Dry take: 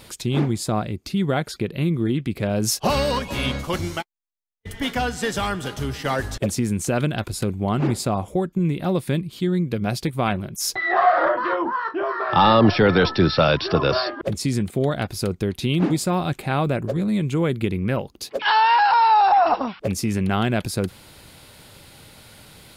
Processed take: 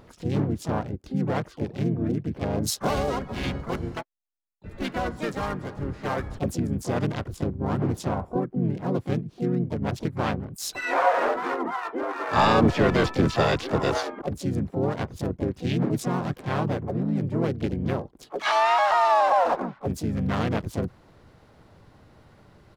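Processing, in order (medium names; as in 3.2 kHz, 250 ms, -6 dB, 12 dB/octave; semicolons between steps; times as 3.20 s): local Wiener filter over 15 samples; harmony voices -5 st -3 dB, +5 st -5 dB, +12 st -16 dB; trim -6.5 dB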